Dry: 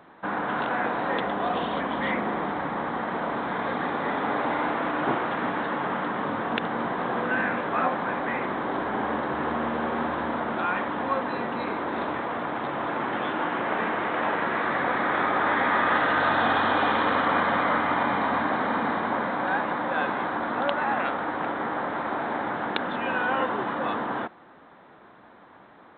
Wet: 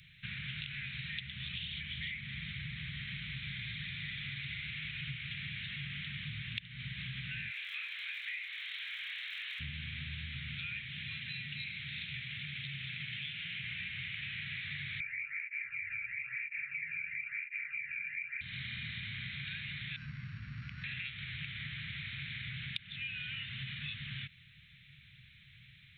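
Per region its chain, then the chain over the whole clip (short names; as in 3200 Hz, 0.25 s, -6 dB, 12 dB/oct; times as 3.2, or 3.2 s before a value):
7.47–9.59 HPF 810 Hz 24 dB/oct + crackle 120/s -55 dBFS + doubler 24 ms -5.5 dB
10.86–13.64 HPF 130 Hz + bell 640 Hz -12.5 dB 1.1 oct
15–18.41 inverted band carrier 2600 Hz + tape flanging out of phase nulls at 1 Hz, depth 1.1 ms
19.96–20.84 sample sorter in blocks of 8 samples + LPF 1500 Hz 24 dB/oct
whole clip: Chebyshev band-stop 140–2300 Hz, order 4; compressor, threshold -47 dBFS; gain +8.5 dB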